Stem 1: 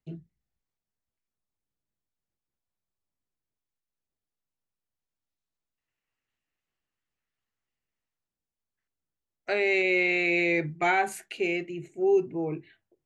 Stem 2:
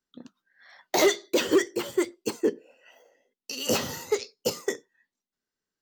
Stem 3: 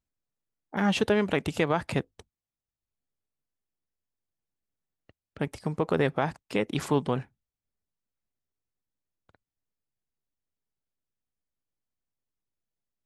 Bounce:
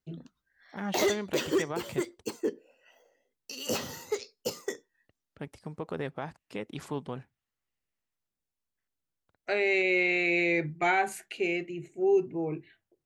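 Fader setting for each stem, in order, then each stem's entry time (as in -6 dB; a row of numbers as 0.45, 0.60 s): -1.5, -6.0, -10.0 dB; 0.00, 0.00, 0.00 s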